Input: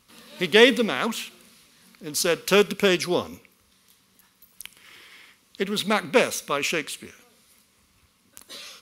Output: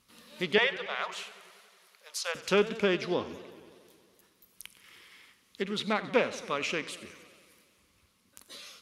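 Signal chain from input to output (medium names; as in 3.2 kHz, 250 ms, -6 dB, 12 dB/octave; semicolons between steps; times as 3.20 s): low-pass that closes with the level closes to 3 kHz, closed at -17.5 dBFS; 0.58–2.35 s: elliptic high-pass 560 Hz; modulated delay 92 ms, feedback 74%, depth 159 cents, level -17 dB; trim -6.5 dB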